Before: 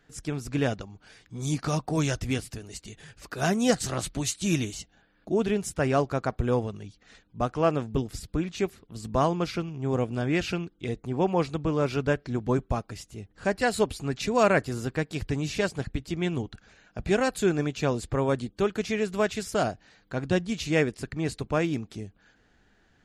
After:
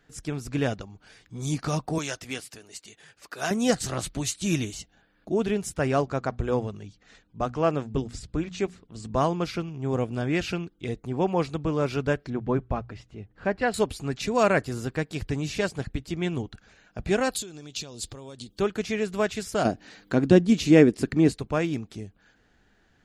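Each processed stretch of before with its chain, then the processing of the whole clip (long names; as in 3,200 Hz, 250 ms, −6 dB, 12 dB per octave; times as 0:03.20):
0:01.98–0:03.51: high-pass filter 640 Hz 6 dB per octave + one half of a high-frequency compander decoder only
0:06.01–0:09.17: Chebyshev low-pass filter 8,000 Hz, order 3 + mains-hum notches 60/120/180/240 Hz
0:12.30–0:13.74: low-pass filter 2,800 Hz + mains-hum notches 60/120 Hz
0:17.31–0:18.59: downward compressor 16 to 1, threshold −37 dBFS + high shelf with overshoot 2,700 Hz +10.5 dB, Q 1.5
0:19.65–0:21.32: parametric band 280 Hz +12.5 dB 1.7 octaves + one half of a high-frequency compander encoder only
whole clip: no processing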